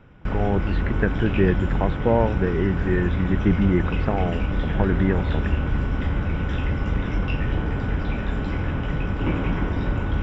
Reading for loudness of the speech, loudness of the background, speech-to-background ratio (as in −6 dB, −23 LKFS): −24.5 LKFS, −26.0 LKFS, 1.5 dB